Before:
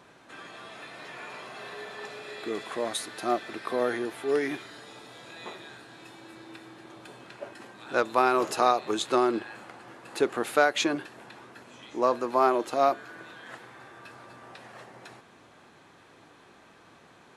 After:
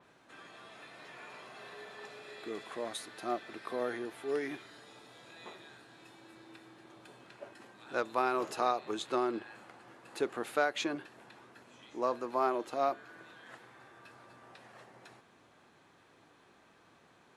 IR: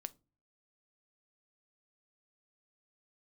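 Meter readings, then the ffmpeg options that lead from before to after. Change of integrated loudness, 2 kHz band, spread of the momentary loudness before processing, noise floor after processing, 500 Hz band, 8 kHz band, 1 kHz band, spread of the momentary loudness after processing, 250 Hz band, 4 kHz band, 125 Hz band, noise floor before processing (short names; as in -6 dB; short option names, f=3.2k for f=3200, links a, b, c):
-8.0 dB, -8.0 dB, 23 LU, -64 dBFS, -8.0 dB, -10.0 dB, -8.0 dB, 23 LU, -8.0 dB, -8.5 dB, -8.0 dB, -56 dBFS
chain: -af "adynamicequalizer=threshold=0.00631:dfrequency=4700:dqfactor=0.7:tfrequency=4700:tqfactor=0.7:attack=5:release=100:ratio=0.375:range=2:mode=cutabove:tftype=highshelf,volume=-8dB"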